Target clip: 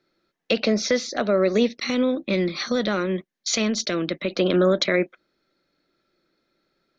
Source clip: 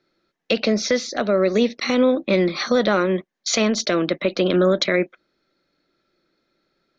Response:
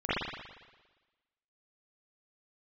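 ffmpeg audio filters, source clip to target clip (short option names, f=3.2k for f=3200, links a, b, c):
-filter_complex "[0:a]asettb=1/sr,asplit=3[a][b][c];[a]atrim=end=1.684[d];[b]atrim=start=1.68:end=4.31,asetpts=PTS-STARTPTS,afade=t=in:d=0.004:c=qsin,afade=t=out:st=2.626:d=0.004:c=qsin,equalizer=f=790:t=o:w=2.2:g=-6.5[e];[c]atrim=start=4.306[f];[d][e]acrossfade=d=0.004:c1=hsin:c2=qsin[g];[g][f]acrossfade=d=0.004:c1=qsin:c2=hsin,volume=-1.5dB"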